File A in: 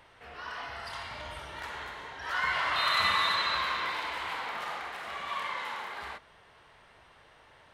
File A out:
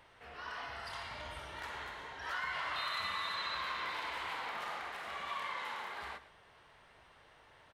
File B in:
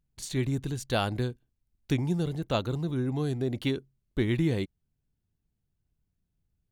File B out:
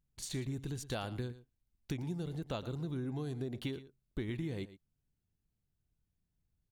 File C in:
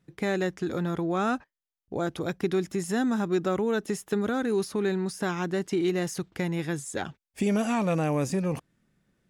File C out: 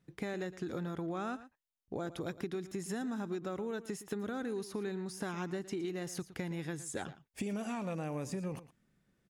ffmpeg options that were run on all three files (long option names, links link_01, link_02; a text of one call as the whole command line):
ffmpeg -i in.wav -af "acompressor=threshold=-31dB:ratio=6,aecho=1:1:114:0.168,volume=-4dB" out.wav